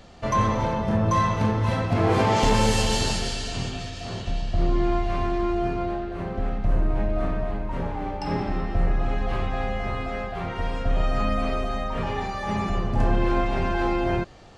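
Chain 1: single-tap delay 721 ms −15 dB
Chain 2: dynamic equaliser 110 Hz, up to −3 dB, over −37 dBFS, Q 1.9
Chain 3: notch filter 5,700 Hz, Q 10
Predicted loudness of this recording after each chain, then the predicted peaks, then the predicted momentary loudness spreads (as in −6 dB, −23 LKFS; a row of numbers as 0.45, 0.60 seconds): −25.5, −26.0, −26.0 LKFS; −8.0, −8.0, −7.5 dBFS; 9, 9, 9 LU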